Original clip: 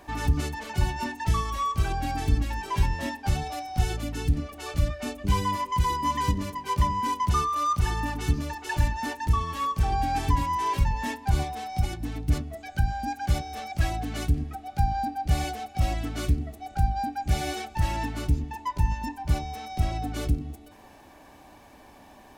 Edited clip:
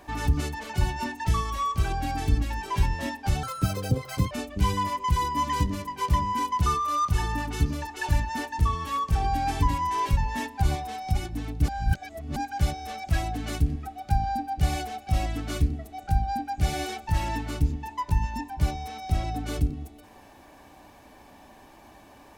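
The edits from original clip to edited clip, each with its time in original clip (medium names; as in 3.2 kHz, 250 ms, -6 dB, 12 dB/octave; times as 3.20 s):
3.43–4.99 s: speed 177%
12.36–13.04 s: reverse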